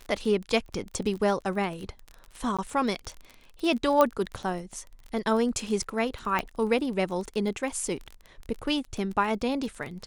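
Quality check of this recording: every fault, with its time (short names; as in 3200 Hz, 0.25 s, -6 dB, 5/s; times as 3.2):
crackle 27/s -33 dBFS
2.57–2.59 gap 16 ms
4.01 pop -9 dBFS
6.39 pop -13 dBFS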